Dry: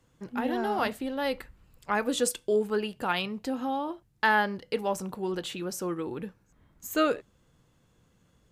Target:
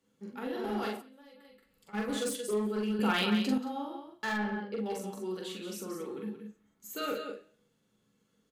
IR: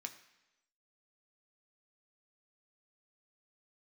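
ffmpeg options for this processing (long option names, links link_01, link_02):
-filter_complex "[0:a]equalizer=frequency=170:width=1.2:gain=12.5,bandreject=frequency=1000:width=15,aecho=1:1:179:0.422[link_01];[1:a]atrim=start_sample=2205,asetrate=79380,aresample=44100[link_02];[link_01][link_02]afir=irnorm=-1:irlink=0,asoftclip=type=hard:threshold=-30dB,asplit=3[link_03][link_04][link_05];[link_03]afade=type=out:start_time=0.96:duration=0.02[link_06];[link_04]acompressor=threshold=-54dB:ratio=16,afade=type=in:start_time=0.96:duration=0.02,afade=type=out:start_time=1.93:duration=0.02[link_07];[link_05]afade=type=in:start_time=1.93:duration=0.02[link_08];[link_06][link_07][link_08]amix=inputs=3:normalize=0,asettb=1/sr,asplit=3[link_09][link_10][link_11];[link_09]atrim=end=4.334[link_12];[link_10]atrim=start=4.33:end=4.86,asetpts=PTS-STARTPTS,afade=type=in:duration=0.004:curve=qsin,afade=type=out:start_time=0.526:duration=0.004:curve=qsin,lowpass=frequency=1300:poles=1[link_13];[link_11]atrim=start=4.856[link_14];[link_12][link_13]acrossfade=duration=0.004:curve1=hsin:curve2=qsin[link_15];[link_15][link_14]acrossfade=duration=0.004:curve1=qsin:curve2=hsin,asplit=2[link_16][link_17];[link_17]adelay=43,volume=-2dB[link_18];[link_16][link_18]amix=inputs=2:normalize=0,asettb=1/sr,asplit=3[link_19][link_20][link_21];[link_19]atrim=end=2.994[link_22];[link_20]atrim=start=2.99:end=3.58,asetpts=PTS-STARTPTS,afade=type=in:duration=0.004:curve=qsin,afade=type=out:start_time=0.586:duration=0.004:curve=qsin,acontrast=87[link_23];[link_21]atrim=start=3.576[link_24];[link_22][link_23]acrossfade=duration=0.004:curve1=hsin:curve2=qsin[link_25];[link_25][link_24]acrossfade=duration=0.004:curve1=qsin:curve2=hsin"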